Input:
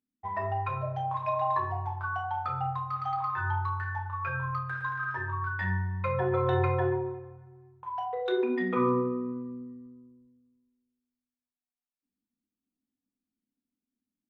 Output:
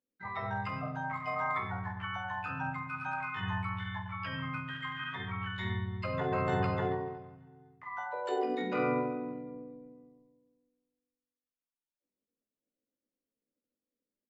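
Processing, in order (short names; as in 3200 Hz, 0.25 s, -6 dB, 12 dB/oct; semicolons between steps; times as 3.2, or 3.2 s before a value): harmoniser -5 st -17 dB, +3 st -2 dB, +12 st -1 dB; high shelf 3600 Hz -9.5 dB; gain -8 dB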